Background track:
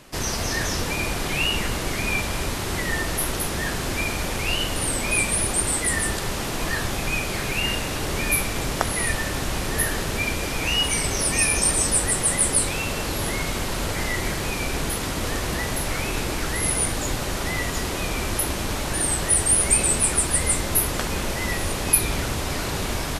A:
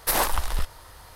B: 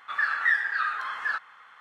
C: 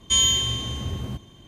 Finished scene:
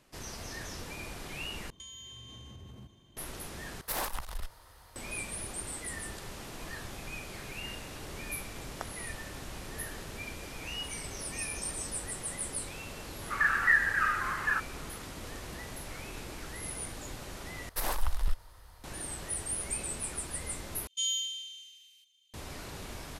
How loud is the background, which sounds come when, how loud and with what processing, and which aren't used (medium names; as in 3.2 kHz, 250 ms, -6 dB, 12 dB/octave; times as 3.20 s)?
background track -16.5 dB
1.70 s: replace with C -12 dB + compression 20:1, threshold -32 dBFS
3.81 s: replace with A -9 dB + single-diode clipper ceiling -24.5 dBFS
13.22 s: add B -1 dB + brick-wall FIR low-pass 3.1 kHz
17.69 s: replace with A -11.5 dB + bass shelf 77 Hz +10.5 dB
20.87 s: replace with C -12 dB + steep high-pass 2.6 kHz